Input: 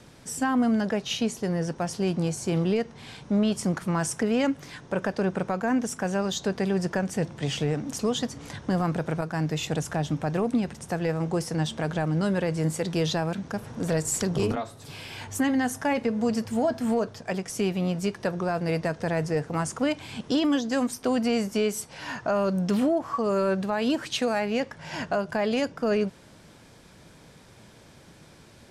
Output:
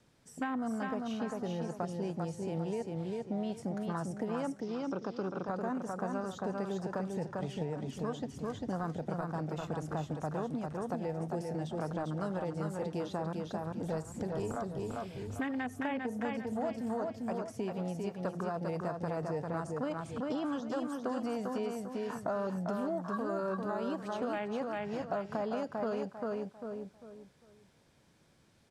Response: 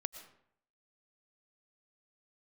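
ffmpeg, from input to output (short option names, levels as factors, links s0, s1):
-filter_complex "[0:a]afwtdn=0.0316,aecho=1:1:397|794|1191|1588:0.562|0.157|0.0441|0.0123,acrossover=split=760|2700[s0][s1][s2];[s0]acompressor=threshold=0.0141:ratio=4[s3];[s1]acompressor=threshold=0.01:ratio=4[s4];[s2]acompressor=threshold=0.002:ratio=4[s5];[s3][s4][s5]amix=inputs=3:normalize=0,asettb=1/sr,asplit=3[s6][s7][s8];[s6]atrim=end=4.604[s9];[s7]atrim=start=4.6:end=5.48,asetpts=PTS-STARTPTS,afade=t=in:d=0.004:c=qsin,afade=t=out:st=0.876:d=0.004:c=qsin,highpass=120,equalizer=f=330:t=q:w=4:g=5,equalizer=f=630:t=q:w=4:g=-6,equalizer=f=950:t=q:w=4:g=-4,equalizer=f=1800:t=q:w=4:g=-8,equalizer=f=3500:t=q:w=4:g=4,equalizer=f=5400:t=q:w=4:g=10,lowpass=f=6300:w=0.5412,lowpass=f=6300:w=1.3066[s10];[s8]atrim=start=5.476[s11];[s9][s10]acrossfade=d=0.004:c1=hsin:c2=qsin[s12];[s12][s11]acrossfade=d=0.004:c1=qsin:c2=hsin[s13];[1:a]atrim=start_sample=2205,afade=t=out:st=0.14:d=0.01,atrim=end_sample=6615[s14];[s13][s14]afir=irnorm=-1:irlink=0,volume=1.19"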